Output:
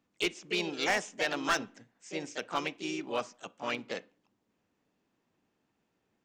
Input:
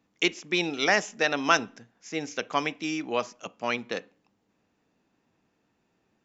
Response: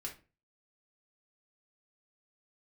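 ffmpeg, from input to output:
-filter_complex "[0:a]asplit=3[s0][s1][s2];[s1]asetrate=52444,aresample=44100,atempo=0.840896,volume=0.501[s3];[s2]asetrate=55563,aresample=44100,atempo=0.793701,volume=0.224[s4];[s0][s3][s4]amix=inputs=3:normalize=0,asoftclip=type=hard:threshold=0.178,volume=0.473"

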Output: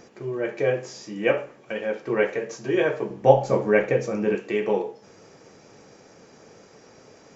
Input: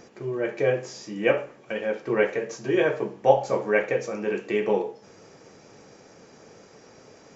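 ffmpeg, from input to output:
-filter_complex "[0:a]asettb=1/sr,asplit=3[s0][s1][s2];[s0]atrim=end=3.104[s3];[s1]atrim=start=3.1:end=4.35,asetpts=PTS-STARTPTS,afade=t=in:d=0.004:c=qsin,afade=t=out:st=1.246:d=0.004:c=qsin,lowshelf=f=290:g=11.5[s4];[s2]atrim=start=4.346[s5];[s3][s4]acrossfade=d=0.004:c1=hsin:c2=qsin[s6];[s6][s5]acrossfade=d=0.004:c1=qsin:c2=hsin"

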